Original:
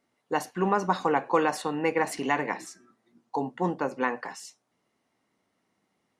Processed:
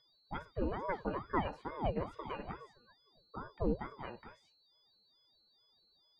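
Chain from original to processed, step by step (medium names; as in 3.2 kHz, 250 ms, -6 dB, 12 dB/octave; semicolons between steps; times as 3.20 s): whistle 4.2 kHz -39 dBFS; pitch-class resonator E, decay 0.11 s; ring modulator with a swept carrier 460 Hz, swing 75%, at 2.3 Hz; trim +3 dB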